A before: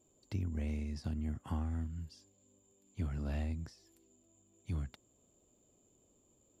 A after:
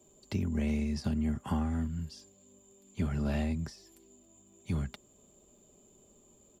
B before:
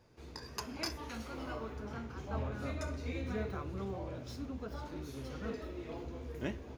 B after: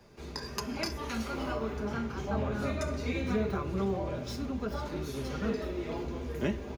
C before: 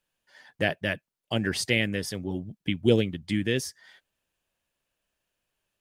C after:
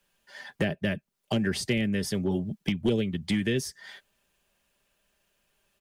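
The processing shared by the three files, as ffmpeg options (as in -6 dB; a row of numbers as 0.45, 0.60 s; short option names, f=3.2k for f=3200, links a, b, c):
-filter_complex "[0:a]aecho=1:1:5:0.42,acrossover=split=110|400[a][b][c];[a]acompressor=threshold=-44dB:ratio=4[d];[b]acompressor=threshold=-36dB:ratio=4[e];[c]acompressor=threshold=-41dB:ratio=4[f];[d][e][f]amix=inputs=3:normalize=0,aeval=exprs='clip(val(0),-1,0.0422)':c=same,volume=8dB"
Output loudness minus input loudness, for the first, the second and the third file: +6.0, +7.5, -1.0 LU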